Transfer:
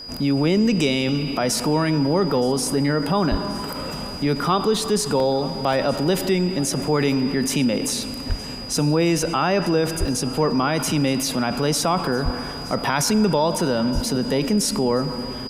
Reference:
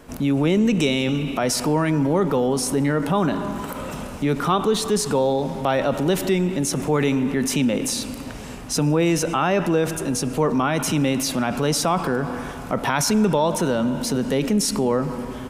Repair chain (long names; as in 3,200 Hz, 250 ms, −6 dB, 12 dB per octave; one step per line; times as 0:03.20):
notch filter 4,900 Hz, Q 30
high-pass at the plosives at 0:03.30/0:08.28/0:09.99/0:12.24/0:13.94
repair the gap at 0:05.20/0:05.73/0:10.08/0:12.93, 1.6 ms
echo removal 920 ms −20.5 dB